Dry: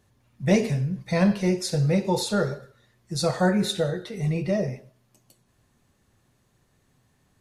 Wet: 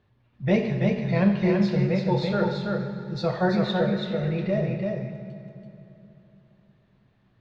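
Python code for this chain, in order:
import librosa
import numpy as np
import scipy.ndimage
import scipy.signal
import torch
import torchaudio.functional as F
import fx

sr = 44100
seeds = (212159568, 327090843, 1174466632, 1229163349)

p1 = scipy.signal.sosfilt(scipy.signal.butter(4, 3800.0, 'lowpass', fs=sr, output='sos'), x)
p2 = p1 + fx.echo_single(p1, sr, ms=333, db=-3.5, dry=0)
p3 = fx.rev_fdn(p2, sr, rt60_s=3.1, lf_ratio=1.25, hf_ratio=0.75, size_ms=49.0, drr_db=7.0)
y = F.gain(torch.from_numpy(p3), -2.0).numpy()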